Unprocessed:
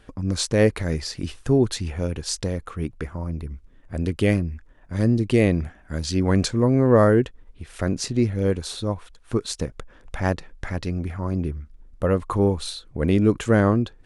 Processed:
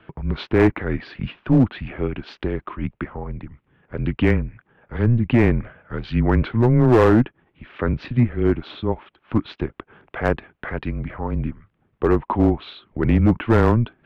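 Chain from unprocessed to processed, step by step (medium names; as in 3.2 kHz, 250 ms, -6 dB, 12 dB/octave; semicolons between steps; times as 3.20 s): mistuned SSB -120 Hz 180–3200 Hz; low-pass that closes with the level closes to 2.4 kHz, closed at -18 dBFS; overload inside the chain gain 13.5 dB; trim +5 dB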